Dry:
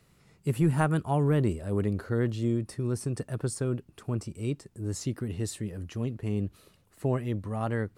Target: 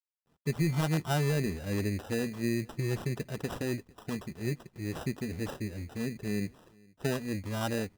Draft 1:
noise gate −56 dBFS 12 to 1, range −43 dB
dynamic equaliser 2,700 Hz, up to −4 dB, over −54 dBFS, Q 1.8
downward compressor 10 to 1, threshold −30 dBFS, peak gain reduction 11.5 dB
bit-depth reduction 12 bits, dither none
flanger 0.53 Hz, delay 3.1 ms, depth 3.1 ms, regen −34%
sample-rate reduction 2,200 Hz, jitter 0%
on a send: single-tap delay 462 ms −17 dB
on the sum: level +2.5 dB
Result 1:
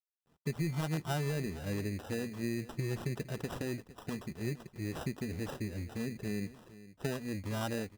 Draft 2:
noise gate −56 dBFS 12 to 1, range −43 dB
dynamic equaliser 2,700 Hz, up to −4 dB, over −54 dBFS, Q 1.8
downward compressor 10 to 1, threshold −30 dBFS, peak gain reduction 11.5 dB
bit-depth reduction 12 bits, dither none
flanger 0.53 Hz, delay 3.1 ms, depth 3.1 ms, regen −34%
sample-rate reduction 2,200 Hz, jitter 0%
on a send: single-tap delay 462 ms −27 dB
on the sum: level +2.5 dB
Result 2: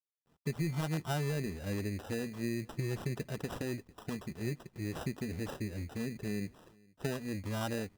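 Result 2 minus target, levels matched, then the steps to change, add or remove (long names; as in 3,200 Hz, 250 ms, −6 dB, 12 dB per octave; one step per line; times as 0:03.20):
downward compressor: peak gain reduction +6 dB
change: downward compressor 10 to 1, threshold −23.5 dBFS, peak gain reduction 5.5 dB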